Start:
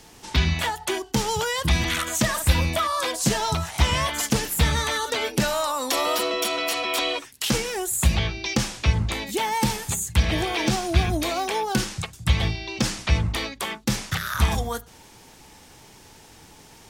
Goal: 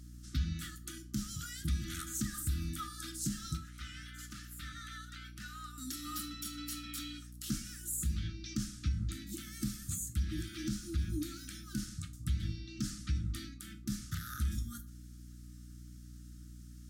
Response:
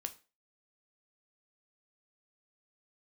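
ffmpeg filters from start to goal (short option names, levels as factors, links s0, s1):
-filter_complex "[0:a]asettb=1/sr,asplit=3[s0][s1][s2];[s0]atrim=end=3.574[s3];[s1]atrim=start=3.57:end=5.78,asetpts=PTS-STARTPTS,afade=t=in:d=0.004:c=qsin,afade=t=out:st=2.206:d=0.004:c=qsin,acrossover=split=570 3600:gain=0.0794 1 0.224[s4][s5][s6];[s4][s5][s6]amix=inputs=3:normalize=0[s7];[s2]atrim=start=5.776[s8];[s3][s7]acrossfade=d=0.004:c1=hsin:c2=qsin[s9];[s9][s8]acrossfade=d=0.004:c1=qsin:c2=hsin[s10];[1:a]atrim=start_sample=2205[s11];[s10][s11]afir=irnorm=-1:irlink=0,afftfilt=real='re*(1-between(b*sr/4096,350,1200))':imag='im*(1-between(b*sr/4096,350,1200))':win_size=4096:overlap=0.75,equalizer=f=2400:t=o:w=1.4:g=-15,aeval=exprs='val(0)+0.00891*(sin(2*PI*60*n/s)+sin(2*PI*2*60*n/s)/2+sin(2*PI*3*60*n/s)/3+sin(2*PI*4*60*n/s)/4+sin(2*PI*5*60*n/s)/5)':c=same,alimiter=limit=0.15:level=0:latency=1:release=196,volume=0.398"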